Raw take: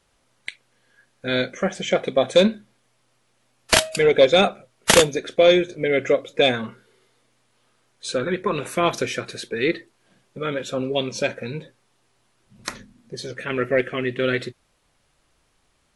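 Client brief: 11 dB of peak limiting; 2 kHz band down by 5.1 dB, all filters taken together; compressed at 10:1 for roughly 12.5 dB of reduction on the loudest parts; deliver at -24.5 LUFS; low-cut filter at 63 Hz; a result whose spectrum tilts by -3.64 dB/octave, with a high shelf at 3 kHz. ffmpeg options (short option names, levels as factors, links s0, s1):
-af "highpass=63,equalizer=f=2000:t=o:g=-9,highshelf=f=3000:g=6,acompressor=threshold=0.0794:ratio=10,volume=1.88,alimiter=limit=0.266:level=0:latency=1"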